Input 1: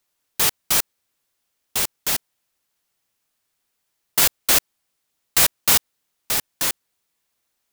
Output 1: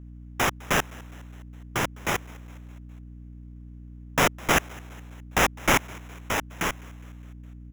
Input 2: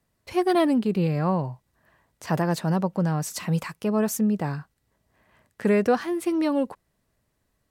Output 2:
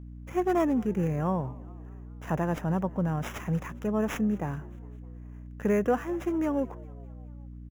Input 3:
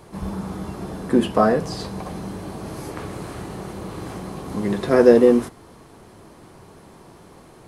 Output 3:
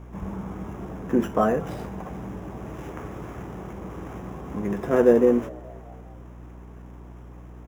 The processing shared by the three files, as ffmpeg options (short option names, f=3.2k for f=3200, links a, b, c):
-filter_complex "[0:a]acrossover=split=2100[a][b];[b]acrusher=samples=10:mix=1:aa=0.000001[c];[a][c]amix=inputs=2:normalize=0,aeval=exprs='val(0)+0.0141*(sin(2*PI*60*n/s)+sin(2*PI*2*60*n/s)/2+sin(2*PI*3*60*n/s)/3+sin(2*PI*4*60*n/s)/4+sin(2*PI*5*60*n/s)/5)':c=same,asplit=5[d][e][f][g][h];[e]adelay=206,afreqshift=71,volume=-23.5dB[i];[f]adelay=412,afreqshift=142,volume=-28.4dB[j];[g]adelay=618,afreqshift=213,volume=-33.3dB[k];[h]adelay=824,afreqshift=284,volume=-38.1dB[l];[d][i][j][k][l]amix=inputs=5:normalize=0,volume=-4.5dB"